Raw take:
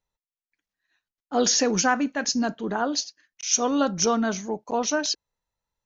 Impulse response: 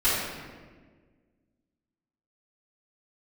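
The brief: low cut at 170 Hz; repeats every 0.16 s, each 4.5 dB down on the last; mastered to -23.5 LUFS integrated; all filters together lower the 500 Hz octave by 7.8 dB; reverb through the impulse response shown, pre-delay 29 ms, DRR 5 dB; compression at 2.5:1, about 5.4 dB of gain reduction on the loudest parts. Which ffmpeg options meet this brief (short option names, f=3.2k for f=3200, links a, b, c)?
-filter_complex "[0:a]highpass=170,equalizer=f=500:t=o:g=-9,acompressor=threshold=-26dB:ratio=2.5,aecho=1:1:160|320|480|640|800|960|1120|1280|1440:0.596|0.357|0.214|0.129|0.0772|0.0463|0.0278|0.0167|0.01,asplit=2[a][b];[1:a]atrim=start_sample=2205,adelay=29[c];[b][c]afir=irnorm=-1:irlink=0,volume=-20dB[d];[a][d]amix=inputs=2:normalize=0,volume=3.5dB"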